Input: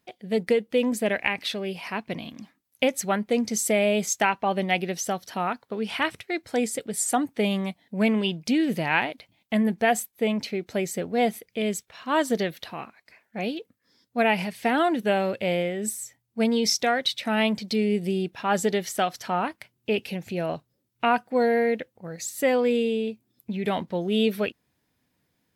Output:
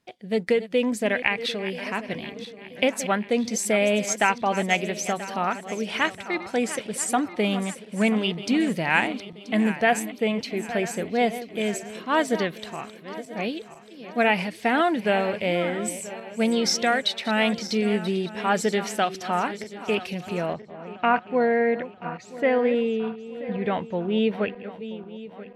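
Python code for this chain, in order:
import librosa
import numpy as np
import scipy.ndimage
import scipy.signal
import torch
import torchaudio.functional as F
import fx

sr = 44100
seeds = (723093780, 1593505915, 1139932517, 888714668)

y = fx.reverse_delay_fb(x, sr, ms=491, feedback_pct=66, wet_db=-13.0)
y = fx.lowpass(y, sr, hz=fx.steps((0.0, 10000.0), (20.53, 2500.0)), slope=12)
y = fx.dynamic_eq(y, sr, hz=1700.0, q=0.97, threshold_db=-37.0, ratio=4.0, max_db=3)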